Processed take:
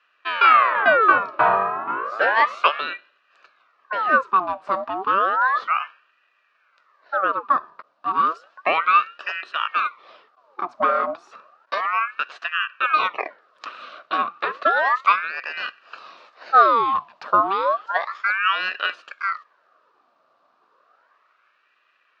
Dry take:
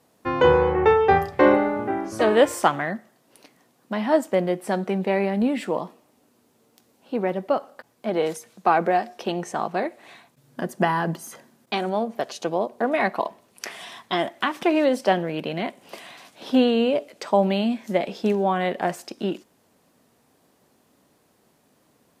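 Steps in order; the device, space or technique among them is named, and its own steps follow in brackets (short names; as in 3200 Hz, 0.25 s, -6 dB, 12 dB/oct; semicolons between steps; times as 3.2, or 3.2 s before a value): voice changer toy (ring modulator with a swept carrier 1300 Hz, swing 70%, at 0.32 Hz; speaker cabinet 520–3800 Hz, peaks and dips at 580 Hz +4 dB, 840 Hz -6 dB, 1200 Hz +9 dB, 2100 Hz -9 dB, 3300 Hz -6 dB); gain +4 dB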